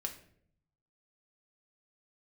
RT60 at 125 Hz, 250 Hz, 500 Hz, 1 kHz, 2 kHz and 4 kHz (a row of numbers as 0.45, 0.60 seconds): 1.2, 0.90, 0.75, 0.50, 0.50, 0.40 seconds